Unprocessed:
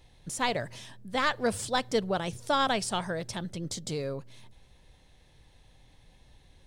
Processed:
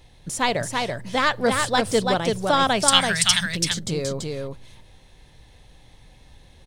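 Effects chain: 2.88–3.46 s: FFT filter 170 Hz 0 dB, 330 Hz -27 dB, 2.1 kHz +14 dB; delay 334 ms -3.5 dB; trim +6.5 dB

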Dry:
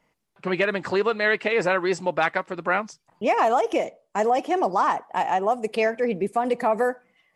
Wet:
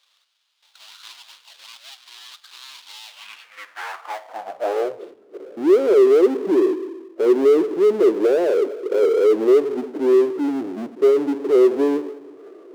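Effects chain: median filter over 25 samples; speed mistake 78 rpm record played at 45 rpm; band-pass sweep 1 kHz -> 400 Hz, 3.77–4.98 s; power-law waveshaper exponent 0.5; high-pass sweep 3.7 kHz -> 360 Hz, 3.03–5.20 s

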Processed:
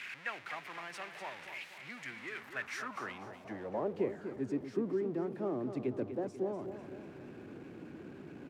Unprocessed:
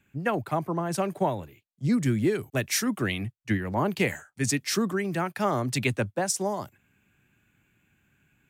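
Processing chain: jump at every zero crossing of -26 dBFS; feedback delay 246 ms, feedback 51%, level -9.5 dB; band-pass sweep 2.1 kHz -> 350 Hz, 2.30–4.18 s; trim -5.5 dB

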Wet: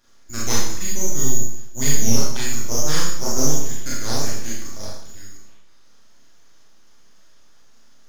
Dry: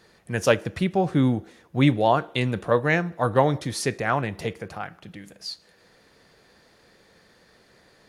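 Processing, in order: frequency inversion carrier 3.6 kHz; full-wave rectifier; Schroeder reverb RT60 0.7 s, combs from 27 ms, DRR -6 dB; trim -5 dB

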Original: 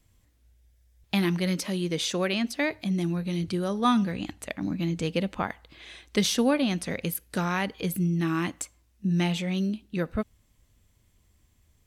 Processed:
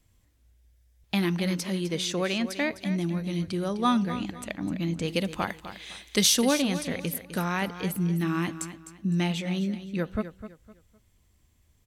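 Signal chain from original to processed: 5.08–6.62 s: treble shelf 3.9 kHz +12 dB; on a send: feedback delay 255 ms, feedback 30%, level -12 dB; on the sum: trim -1 dB

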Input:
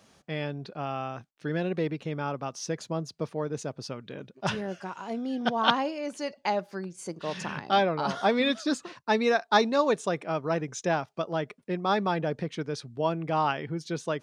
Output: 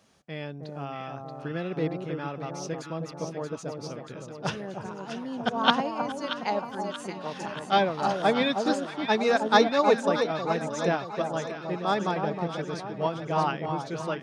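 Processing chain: echo whose repeats swap between lows and highs 315 ms, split 1.1 kHz, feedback 76%, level -3.5 dB; upward expansion 1.5:1, over -30 dBFS; trim +2.5 dB

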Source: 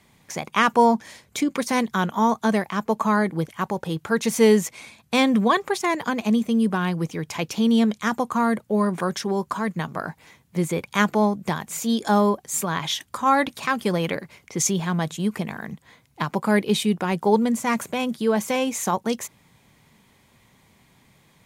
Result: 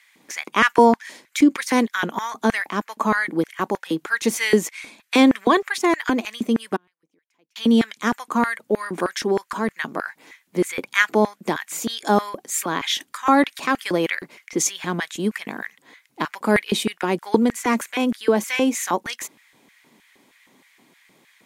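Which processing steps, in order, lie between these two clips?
6.76–7.56 s: inverted gate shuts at -28 dBFS, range -40 dB; LFO high-pass square 3.2 Hz 290–1800 Hz; trim +1 dB

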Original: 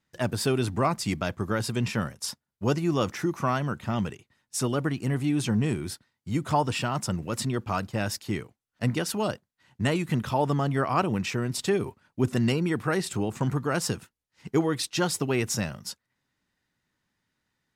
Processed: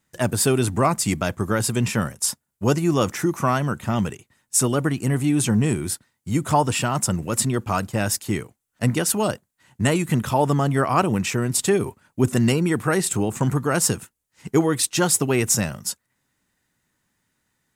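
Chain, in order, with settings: resonant high shelf 6.2 kHz +6.5 dB, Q 1.5; trim +5.5 dB

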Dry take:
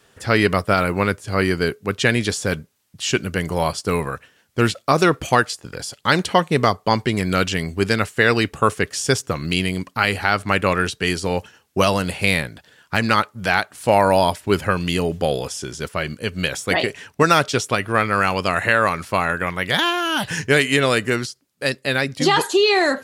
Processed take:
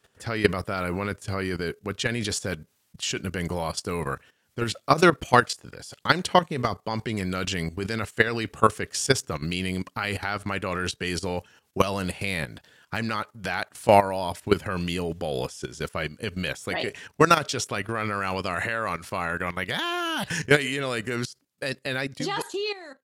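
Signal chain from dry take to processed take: fade out at the end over 1.26 s; level held to a coarse grid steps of 14 dB

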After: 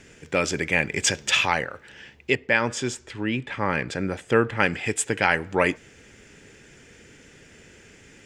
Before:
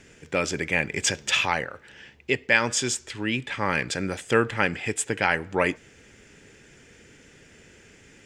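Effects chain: 2.35–4.60 s: treble shelf 2.8 kHz -11 dB; trim +2 dB

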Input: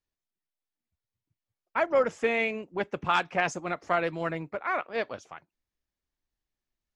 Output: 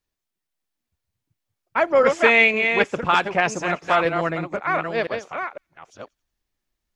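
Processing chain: chunks repeated in reverse 507 ms, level -6 dB; 2.04–2.87 s: peaking EQ 2.8 kHz +8 dB 2.9 oct; feedback echo behind a high-pass 89 ms, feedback 43%, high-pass 5.4 kHz, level -18 dB; trim +6.5 dB

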